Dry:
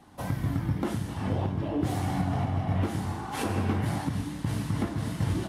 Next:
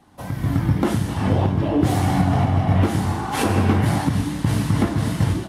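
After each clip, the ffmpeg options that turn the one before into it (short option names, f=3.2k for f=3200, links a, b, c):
-af "dynaudnorm=f=290:g=3:m=10dB"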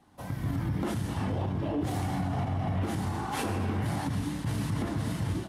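-af "alimiter=limit=-15dB:level=0:latency=1:release=39,volume=-7.5dB"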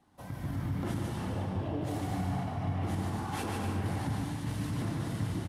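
-af "aecho=1:1:150|247.5|310.9|352.1|378.8:0.631|0.398|0.251|0.158|0.1,volume=-5.5dB"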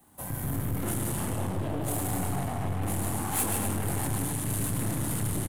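-filter_complex "[0:a]aeval=exprs='(tanh(56.2*val(0)+0.55)-tanh(0.55))/56.2':c=same,acrossover=split=280|1900[a][b][c];[c]aexciter=amount=8:drive=3.5:freq=7.4k[d];[a][b][d]amix=inputs=3:normalize=0,asplit=2[e][f];[f]adelay=29,volume=-10.5dB[g];[e][g]amix=inputs=2:normalize=0,volume=7.5dB"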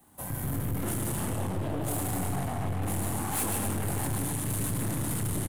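-af "volume=24.5dB,asoftclip=hard,volume=-24.5dB"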